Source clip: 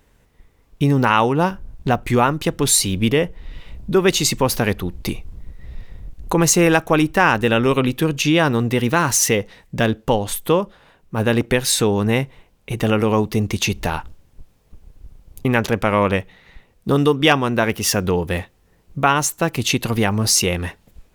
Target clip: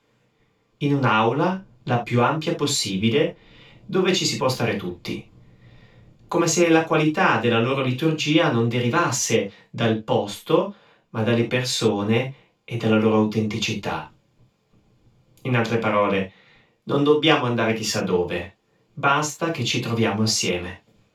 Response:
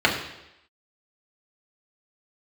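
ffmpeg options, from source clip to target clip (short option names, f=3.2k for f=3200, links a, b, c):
-filter_complex "[1:a]atrim=start_sample=2205,afade=t=out:st=0.19:d=0.01,atrim=end_sample=8820,asetrate=70560,aresample=44100[a];[0:a][a]afir=irnorm=-1:irlink=0,volume=-17.5dB"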